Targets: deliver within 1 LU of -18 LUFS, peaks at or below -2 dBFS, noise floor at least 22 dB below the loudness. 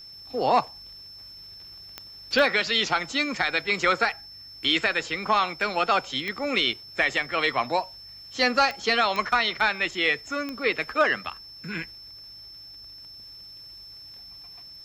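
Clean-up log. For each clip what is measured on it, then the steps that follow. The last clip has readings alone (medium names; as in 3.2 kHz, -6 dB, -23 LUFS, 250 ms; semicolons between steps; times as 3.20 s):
clicks found 6; steady tone 5.3 kHz; tone level -42 dBFS; loudness -24.0 LUFS; peak level -9.5 dBFS; loudness target -18.0 LUFS
-> de-click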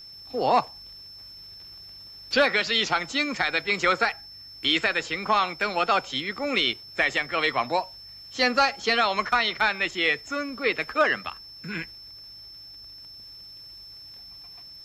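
clicks found 0; steady tone 5.3 kHz; tone level -42 dBFS
-> band-stop 5.3 kHz, Q 30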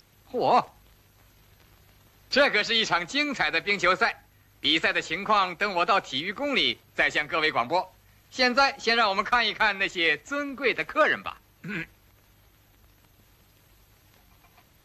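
steady tone not found; loudness -24.5 LUFS; peak level -9.5 dBFS; loudness target -18.0 LUFS
-> trim +6.5 dB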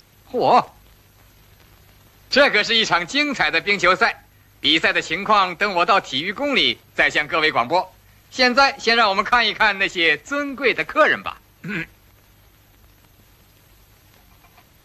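loudness -18.0 LUFS; peak level -3.0 dBFS; noise floor -54 dBFS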